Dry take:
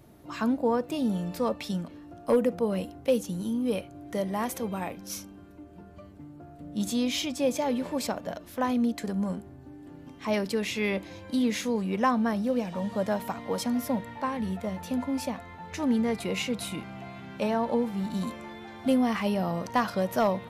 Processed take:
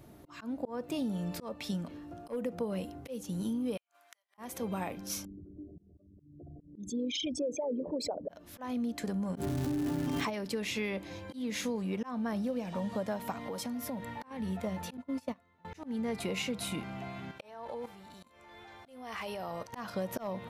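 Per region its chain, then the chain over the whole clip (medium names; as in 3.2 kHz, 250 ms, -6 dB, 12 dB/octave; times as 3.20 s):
3.77–4.38 s: high-pass 1 kHz 24 dB/octave + inverted gate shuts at -38 dBFS, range -39 dB
5.25–8.29 s: resonances exaggerated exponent 3 + peaking EQ 2.6 kHz -3 dB 0.99 oct
9.35–10.29 s: comb 7 ms, depth 42% + crackle 460 per s -47 dBFS + level flattener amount 100%
13.37–14.31 s: treble shelf 11 kHz +4.5 dB + compression 5:1, threshold -35 dBFS
14.97–15.65 s: gate -31 dBFS, range -22 dB + comb of notches 820 Hz
17.31–19.73 s: peaking EQ 210 Hz -14.5 dB 1.1 oct + level held to a coarse grid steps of 13 dB
whole clip: slow attack 343 ms; compression, threshold -31 dBFS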